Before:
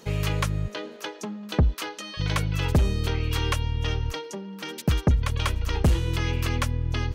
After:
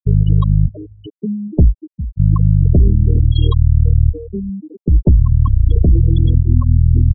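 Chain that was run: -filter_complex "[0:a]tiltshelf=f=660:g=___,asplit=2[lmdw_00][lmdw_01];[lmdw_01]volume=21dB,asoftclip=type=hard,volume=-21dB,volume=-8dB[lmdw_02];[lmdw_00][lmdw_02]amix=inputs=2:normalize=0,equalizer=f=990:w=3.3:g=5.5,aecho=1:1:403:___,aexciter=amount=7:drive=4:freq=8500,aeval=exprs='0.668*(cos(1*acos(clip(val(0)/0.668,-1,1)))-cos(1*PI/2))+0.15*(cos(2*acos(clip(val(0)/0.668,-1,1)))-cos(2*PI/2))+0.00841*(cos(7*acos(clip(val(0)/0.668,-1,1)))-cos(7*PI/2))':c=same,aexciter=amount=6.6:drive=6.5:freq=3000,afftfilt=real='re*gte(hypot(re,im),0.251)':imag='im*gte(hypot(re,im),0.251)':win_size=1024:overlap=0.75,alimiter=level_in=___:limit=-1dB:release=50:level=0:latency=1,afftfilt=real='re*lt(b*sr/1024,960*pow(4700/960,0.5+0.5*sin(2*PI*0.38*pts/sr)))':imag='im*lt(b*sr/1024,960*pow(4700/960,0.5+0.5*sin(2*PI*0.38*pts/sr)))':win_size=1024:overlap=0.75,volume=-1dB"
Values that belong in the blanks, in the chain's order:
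9.5, 0.15, 6dB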